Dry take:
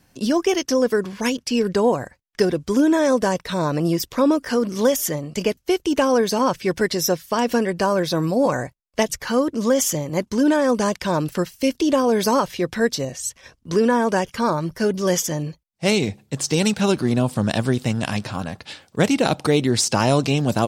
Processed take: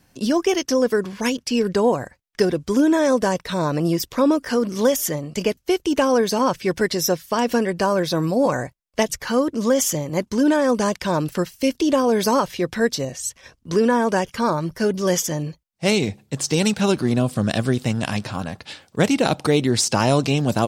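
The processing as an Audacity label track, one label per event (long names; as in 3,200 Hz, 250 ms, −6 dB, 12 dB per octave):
17.220000	17.760000	notch filter 900 Hz, Q 5.4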